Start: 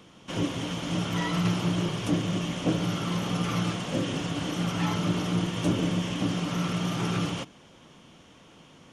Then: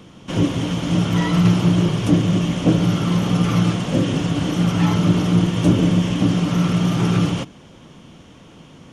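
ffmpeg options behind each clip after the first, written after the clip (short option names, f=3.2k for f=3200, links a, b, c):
-af "lowshelf=f=360:g=8,volume=5dB"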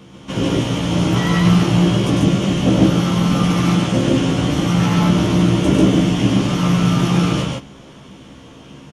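-filter_complex "[0:a]asplit=2[a][b];[b]adelay=15,volume=-2.5dB[c];[a][c]amix=inputs=2:normalize=0,asplit=2[d][e];[e]aecho=0:1:102|142.9:0.631|0.891[f];[d][f]amix=inputs=2:normalize=0,volume=-1dB"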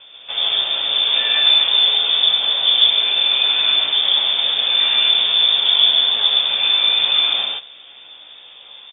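-af "lowpass=f=3.1k:t=q:w=0.5098,lowpass=f=3.1k:t=q:w=0.6013,lowpass=f=3.1k:t=q:w=0.9,lowpass=f=3.1k:t=q:w=2.563,afreqshift=-3700,volume=-1dB"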